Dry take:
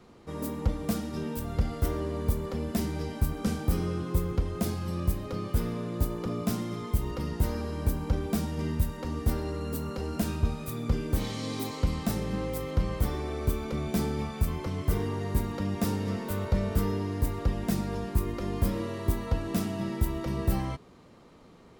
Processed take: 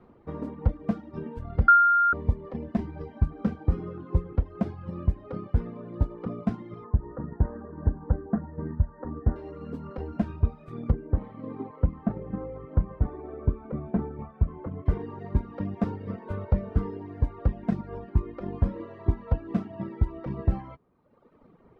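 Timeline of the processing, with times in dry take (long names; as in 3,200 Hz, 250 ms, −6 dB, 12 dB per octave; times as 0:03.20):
0:01.68–0:02.13: beep over 1,400 Hz −10.5 dBFS
0:06.84–0:09.36: Butterworth low-pass 1,900 Hz 96 dB per octave
0:10.91–0:14.86: low-pass filter 1,500 Hz
whole clip: reverb reduction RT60 1.3 s; low-pass filter 1,500 Hz 12 dB per octave; transient designer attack +4 dB, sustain −2 dB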